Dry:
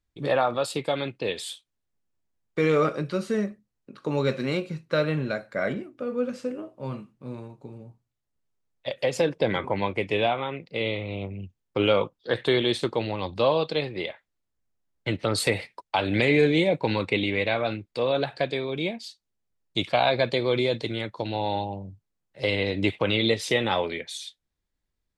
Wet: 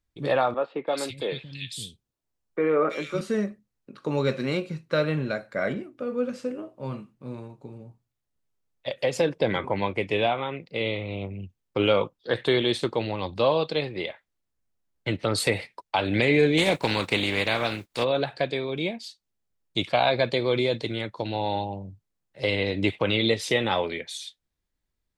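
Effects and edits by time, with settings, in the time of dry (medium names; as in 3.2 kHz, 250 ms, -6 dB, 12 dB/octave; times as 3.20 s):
0.54–3.21 s: three bands offset in time mids, highs, lows 330/560 ms, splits 200/2200 Hz
16.57–18.03 s: spectral contrast reduction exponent 0.6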